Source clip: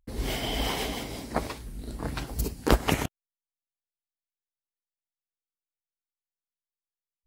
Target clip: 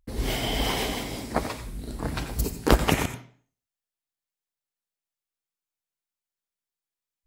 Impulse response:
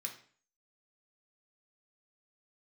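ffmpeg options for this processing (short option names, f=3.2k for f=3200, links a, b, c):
-filter_complex "[0:a]asplit=2[a][b];[1:a]atrim=start_sample=2205,adelay=87[c];[b][c]afir=irnorm=-1:irlink=0,volume=-7.5dB[d];[a][d]amix=inputs=2:normalize=0,volume=2.5dB"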